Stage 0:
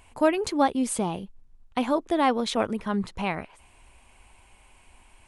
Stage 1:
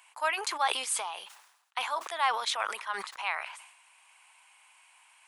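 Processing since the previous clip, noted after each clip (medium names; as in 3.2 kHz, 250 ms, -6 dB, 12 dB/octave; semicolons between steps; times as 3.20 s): high-pass 930 Hz 24 dB/octave; decay stretcher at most 67 dB/s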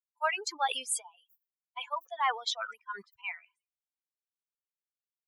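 expander on every frequency bin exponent 3; trim +2.5 dB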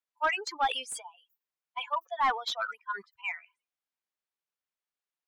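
overdrive pedal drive 12 dB, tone 2 kHz, clips at -16 dBFS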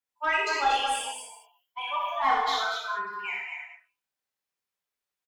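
on a send: loudspeakers at several distances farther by 21 m -4 dB, 81 m -5 dB; on the sum: gated-style reverb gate 260 ms falling, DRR -4.5 dB; trim -3.5 dB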